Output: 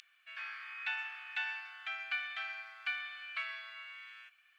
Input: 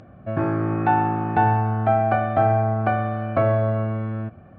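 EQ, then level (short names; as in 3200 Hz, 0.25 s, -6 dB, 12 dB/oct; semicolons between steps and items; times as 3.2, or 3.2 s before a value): inverse Chebyshev high-pass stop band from 430 Hz, stop band 80 dB; +8.5 dB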